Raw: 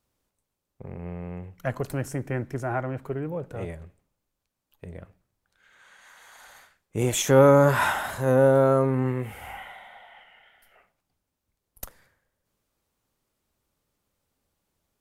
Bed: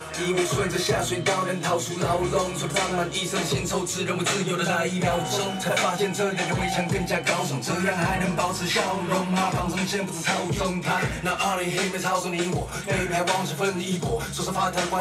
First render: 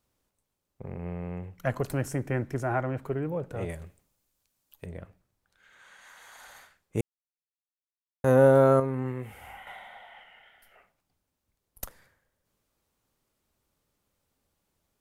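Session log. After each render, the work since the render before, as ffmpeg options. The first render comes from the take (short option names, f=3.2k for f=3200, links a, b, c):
-filter_complex "[0:a]asettb=1/sr,asplit=3[a][b][c];[a]atrim=end=3.694[d];[b]atrim=start=3.69:end=4.86,asetpts=PTS-STARTPTS,afade=t=in:d=0.004:c=qsin,afade=t=out:st=1.166:d=0.004:c=qsin,highshelf=f=3.6k:g=10.5[e];[c]atrim=start=4.856[f];[d][e]acrossfade=d=0.004:c1=hsin:c2=qsin[g];[g][f]acrossfade=d=0.004:c1=qsin:c2=hsin,asplit=5[h][i][j][k][l];[h]atrim=end=7.01,asetpts=PTS-STARTPTS,afade=t=out:st=7.006:d=0.004:c=hsin[m];[i]atrim=start=7.01:end=8.24,asetpts=PTS-STARTPTS,volume=0[n];[j]atrim=start=8.24:end=8.802,asetpts=PTS-STARTPTS,afade=t=in:d=0.004:c=hsin[o];[k]atrim=start=8.798:end=9.672,asetpts=PTS-STARTPTS,volume=-6.5dB[p];[l]atrim=start=9.668[q];[m][n][o]concat=n=3:v=0:a=1[r];[r][p]acrossfade=d=0.004:c1=hsin:c2=hsin[s];[s][q]acrossfade=d=0.004:c1=hsin:c2=hsin"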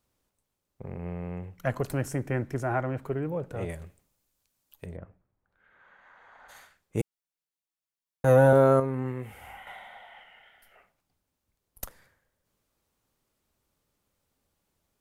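-filter_complex "[0:a]asplit=3[a][b][c];[a]afade=t=out:st=4.95:d=0.02[d];[b]lowpass=1.5k,afade=t=in:st=4.95:d=0.02,afade=t=out:st=6.48:d=0.02[e];[c]afade=t=in:st=6.48:d=0.02[f];[d][e][f]amix=inputs=3:normalize=0,asettb=1/sr,asplit=3[g][h][i];[g]atrim=end=7.004[j];[h]atrim=start=7:end=8.53,asetpts=PTS-STARTPTS,afade=t=in:d=0.004:c=qsin,afade=t=out:st=1.526:d=0.004:c=qsin,aecho=1:1:6.2:0.67,atrim=end_sample=67473[k];[i]atrim=start=8.526[l];[j][k]acrossfade=d=0.004:c1=hsin:c2=qsin[m];[m][l]acrossfade=d=0.004:c1=qsin:c2=hsin"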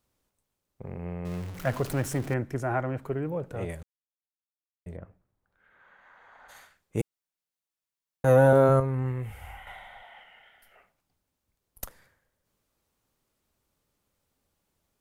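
-filter_complex "[0:a]asettb=1/sr,asplit=3[a][b][c];[a]atrim=end=1.254[d];[b]atrim=start=1.25:end=2.34,asetpts=PTS-STARTPTS,afade=t=in:d=0.004:c=qsin,afade=t=out:st=1.086:d=0.004:c=qsin,aeval=exprs='val(0)+0.5*0.015*sgn(val(0))':c=same[e];[c]atrim=start=2.336[f];[d][e]acrossfade=d=0.004:c1=hsin:c2=qsin[g];[g][f]acrossfade=d=0.004:c1=qsin:c2=hsin,asplit=3[h][i][j];[h]afade=t=out:st=8.68:d=0.02[k];[i]asubboost=boost=5.5:cutoff=100,afade=t=in:st=8.68:d=0.02,afade=t=out:st=10.03:d=0.02[l];[j]afade=t=in:st=10.03:d=0.02[m];[k][l][m]amix=inputs=3:normalize=0,asplit=3[n][o][p];[n]atrim=end=3.83,asetpts=PTS-STARTPTS,afade=t=out:st=3.826:d=0.004:c=hsin[q];[o]atrim=start=3.83:end=4.86,asetpts=PTS-STARTPTS,volume=0[r];[p]atrim=start=4.86,asetpts=PTS-STARTPTS,afade=t=in:d=0.004:c=hsin[s];[q][r][s]concat=n=3:v=0:a=1"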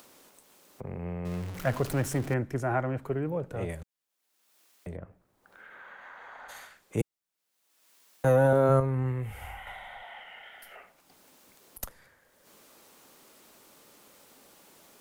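-filter_complex "[0:a]acrossover=split=200[a][b];[b]acompressor=mode=upward:threshold=-38dB:ratio=2.5[c];[a][c]amix=inputs=2:normalize=0,alimiter=limit=-14dB:level=0:latency=1"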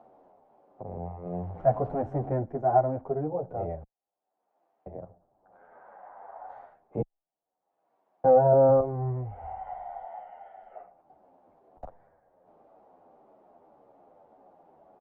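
-filter_complex "[0:a]lowpass=f=740:t=q:w=4.9,asplit=2[a][b];[b]adelay=9.9,afreqshift=-1.9[c];[a][c]amix=inputs=2:normalize=1"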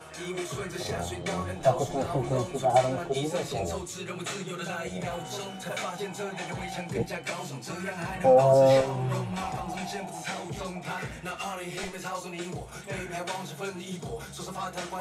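-filter_complex "[1:a]volume=-10.5dB[a];[0:a][a]amix=inputs=2:normalize=0"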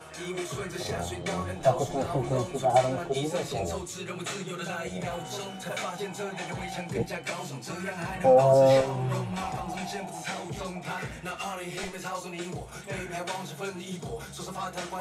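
-af anull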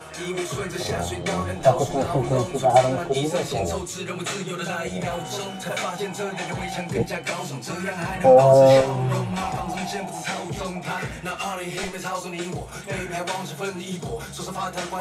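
-af "volume=6dB"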